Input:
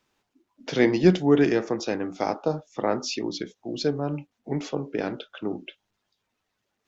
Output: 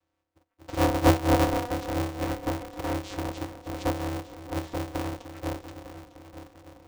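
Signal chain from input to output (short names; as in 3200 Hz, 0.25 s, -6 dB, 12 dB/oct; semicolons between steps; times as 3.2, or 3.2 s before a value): 4.08–4.56 bell 200 Hz -12.5 dB 0.51 oct; vocoder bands 4, saw 205 Hz; multi-head echo 0.301 s, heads first and third, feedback 56%, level -13 dB; polarity switched at an audio rate 120 Hz; gain -2.5 dB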